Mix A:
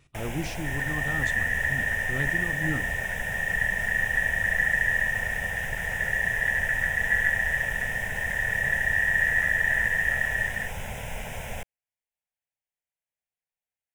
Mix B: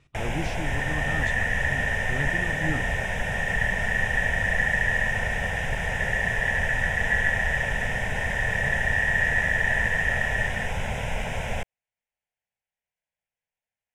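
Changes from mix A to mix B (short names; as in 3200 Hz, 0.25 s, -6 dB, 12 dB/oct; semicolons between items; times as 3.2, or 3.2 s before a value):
first sound +6.5 dB; master: add air absorption 66 m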